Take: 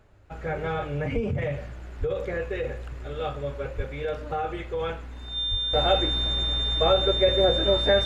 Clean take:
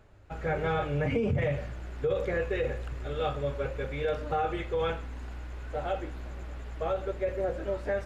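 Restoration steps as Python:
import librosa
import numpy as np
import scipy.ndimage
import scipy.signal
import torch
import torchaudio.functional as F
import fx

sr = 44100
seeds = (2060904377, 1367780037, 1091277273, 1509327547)

y = fx.notch(x, sr, hz=3600.0, q=30.0)
y = fx.fix_deplosive(y, sr, at_s=(1.14, 1.99, 3.76, 5.5))
y = fx.gain(y, sr, db=fx.steps((0.0, 0.0), (5.73, -9.5)))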